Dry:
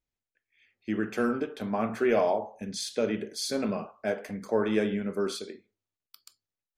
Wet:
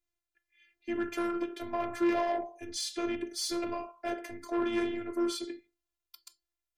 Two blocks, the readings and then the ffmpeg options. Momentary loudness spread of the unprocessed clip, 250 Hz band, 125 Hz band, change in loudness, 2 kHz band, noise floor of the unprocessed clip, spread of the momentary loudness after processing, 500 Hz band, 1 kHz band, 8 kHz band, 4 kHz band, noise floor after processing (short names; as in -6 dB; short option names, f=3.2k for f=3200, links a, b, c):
10 LU, -2.5 dB, -14.5 dB, -4.0 dB, -4.0 dB, under -85 dBFS, 9 LU, -6.0 dB, -1.5 dB, -1.0 dB, -1.0 dB, under -85 dBFS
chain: -af "afreqshift=-27,asoftclip=type=tanh:threshold=-25dB,afftfilt=real='hypot(re,im)*cos(PI*b)':imag='0':win_size=512:overlap=0.75,volume=3.5dB"